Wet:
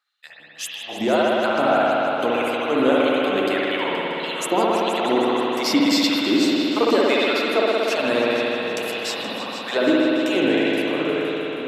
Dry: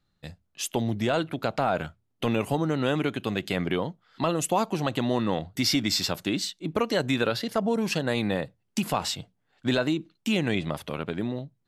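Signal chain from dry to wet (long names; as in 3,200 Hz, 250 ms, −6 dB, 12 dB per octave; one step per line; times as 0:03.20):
echo machine with several playback heads 158 ms, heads all three, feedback 62%, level −16.5 dB
auto-filter high-pass sine 1.7 Hz 270–3,300 Hz
spring reverb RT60 3.8 s, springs 59 ms, chirp 55 ms, DRR −5.5 dB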